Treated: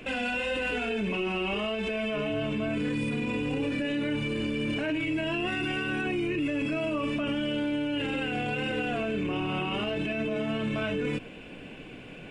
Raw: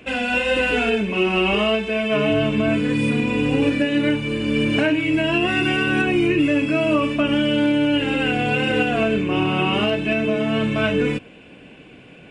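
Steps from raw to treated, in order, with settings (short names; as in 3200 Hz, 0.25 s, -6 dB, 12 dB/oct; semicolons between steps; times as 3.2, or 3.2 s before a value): limiter -22.5 dBFS, peak gain reduction 13.5 dB; added noise brown -56 dBFS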